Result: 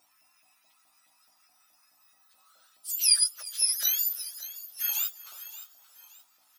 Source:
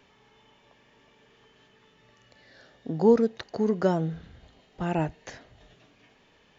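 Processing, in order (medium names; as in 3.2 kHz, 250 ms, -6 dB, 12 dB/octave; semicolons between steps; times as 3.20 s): spectrum inverted on a logarithmic axis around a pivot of 1.5 kHz; differentiator; hum 60 Hz, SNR 28 dB; LFO high-pass saw up 4.7 Hz 610–1600 Hz; delay 354 ms -20 dB; modulated delay 573 ms, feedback 36%, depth 64 cents, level -14 dB; trim +3.5 dB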